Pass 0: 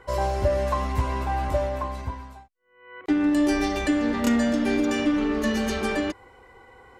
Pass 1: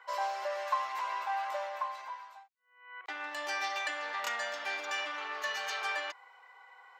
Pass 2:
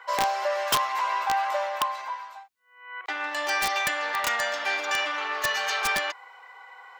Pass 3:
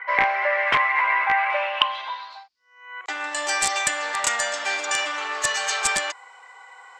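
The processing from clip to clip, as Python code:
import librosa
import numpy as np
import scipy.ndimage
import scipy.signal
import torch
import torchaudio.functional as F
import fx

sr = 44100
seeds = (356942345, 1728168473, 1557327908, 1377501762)

y1 = scipy.signal.sosfilt(scipy.signal.butter(4, 790.0, 'highpass', fs=sr, output='sos'), x)
y1 = fx.peak_eq(y1, sr, hz=10000.0, db=-15.0, octaves=0.71)
y1 = y1 * librosa.db_to_amplitude(-2.5)
y2 = (np.mod(10.0 ** (25.0 / 20.0) * y1 + 1.0, 2.0) - 1.0) / 10.0 ** (25.0 / 20.0)
y2 = y2 * librosa.db_to_amplitude(9.0)
y3 = fx.filter_sweep_lowpass(y2, sr, from_hz=2100.0, to_hz=7900.0, start_s=1.37, end_s=3.17, q=6.8)
y3 = y3 * librosa.db_to_amplitude(1.0)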